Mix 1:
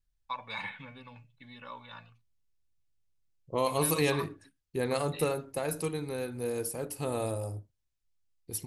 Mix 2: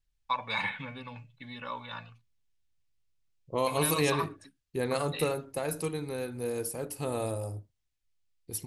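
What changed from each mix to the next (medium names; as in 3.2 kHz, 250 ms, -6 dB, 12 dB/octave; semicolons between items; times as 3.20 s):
first voice +6.5 dB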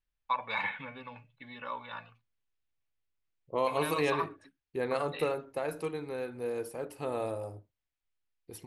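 master: add tone controls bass -9 dB, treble -14 dB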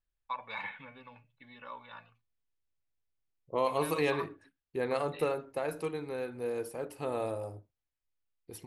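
first voice -6.5 dB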